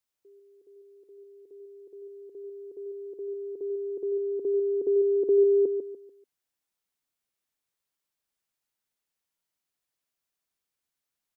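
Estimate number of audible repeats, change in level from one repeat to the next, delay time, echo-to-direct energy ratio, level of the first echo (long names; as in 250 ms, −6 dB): 3, −10.0 dB, 146 ms, −7.5 dB, −8.0 dB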